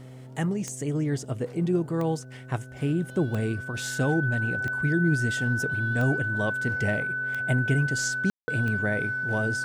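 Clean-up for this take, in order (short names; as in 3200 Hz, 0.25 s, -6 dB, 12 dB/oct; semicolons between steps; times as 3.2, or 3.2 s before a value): de-click; de-hum 128.4 Hz, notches 5; notch 1500 Hz, Q 30; room tone fill 8.3–8.48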